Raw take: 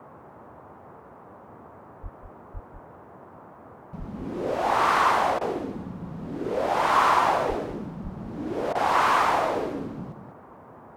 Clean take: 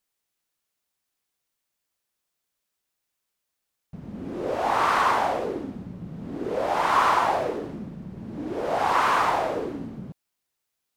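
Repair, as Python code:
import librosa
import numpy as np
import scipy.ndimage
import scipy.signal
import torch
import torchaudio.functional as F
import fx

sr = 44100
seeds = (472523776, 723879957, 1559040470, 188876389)

y = fx.fix_deplosive(x, sr, at_s=(2.02, 2.53, 3.98, 7.48, 8.03))
y = fx.fix_interpolate(y, sr, at_s=(5.39, 8.73), length_ms=19.0)
y = fx.noise_reduce(y, sr, print_start_s=10.4, print_end_s=10.9, reduce_db=30.0)
y = fx.fix_echo_inverse(y, sr, delay_ms=194, level_db=-9.0)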